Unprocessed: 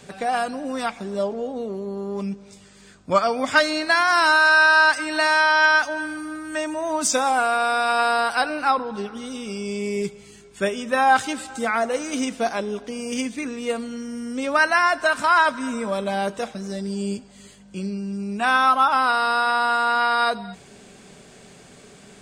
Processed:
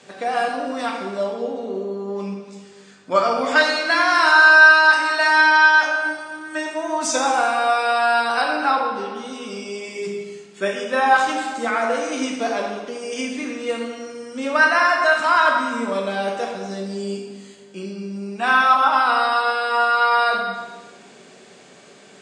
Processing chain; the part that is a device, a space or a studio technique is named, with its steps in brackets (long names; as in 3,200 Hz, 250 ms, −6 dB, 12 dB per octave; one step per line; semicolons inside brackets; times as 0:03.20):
supermarket ceiling speaker (band-pass filter 250–7,000 Hz; convolution reverb RT60 1.4 s, pre-delay 8 ms, DRR −0.5 dB)
level −1 dB